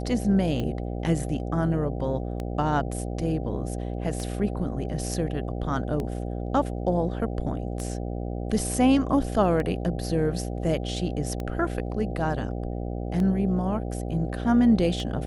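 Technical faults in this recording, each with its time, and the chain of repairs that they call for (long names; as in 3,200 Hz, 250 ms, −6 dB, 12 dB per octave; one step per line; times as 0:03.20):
mains buzz 60 Hz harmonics 13 −31 dBFS
scratch tick 33 1/3 rpm −19 dBFS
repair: click removal
hum removal 60 Hz, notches 13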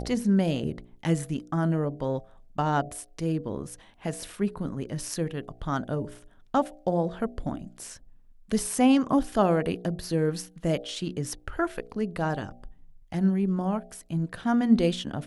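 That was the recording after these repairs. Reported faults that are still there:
none of them is left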